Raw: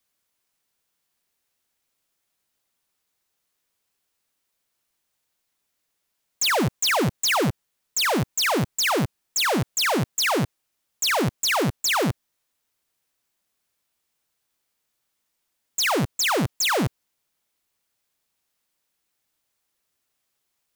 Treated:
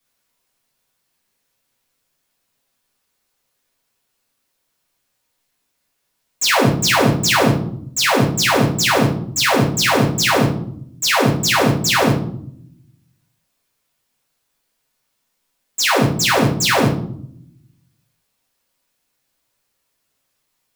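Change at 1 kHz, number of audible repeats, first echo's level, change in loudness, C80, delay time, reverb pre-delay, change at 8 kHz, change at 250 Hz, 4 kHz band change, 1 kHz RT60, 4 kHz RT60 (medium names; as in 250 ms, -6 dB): +7.0 dB, no echo, no echo, +6.5 dB, 11.0 dB, no echo, 7 ms, +5.0 dB, +8.5 dB, +6.0 dB, 0.60 s, 0.40 s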